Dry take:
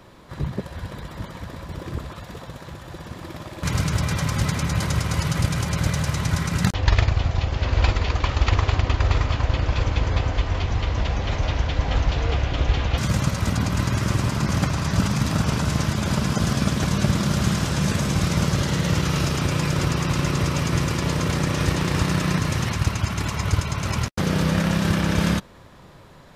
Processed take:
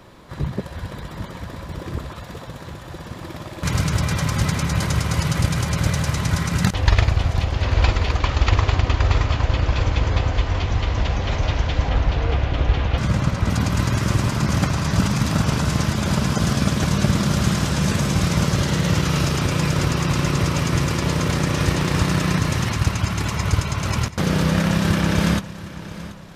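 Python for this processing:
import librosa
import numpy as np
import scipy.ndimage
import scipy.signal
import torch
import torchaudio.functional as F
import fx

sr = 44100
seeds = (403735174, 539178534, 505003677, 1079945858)

p1 = fx.lowpass(x, sr, hz=2800.0, slope=6, at=(11.89, 13.5))
p2 = p1 + fx.echo_feedback(p1, sr, ms=732, feedback_pct=41, wet_db=-16.0, dry=0)
y = F.gain(torch.from_numpy(p2), 2.0).numpy()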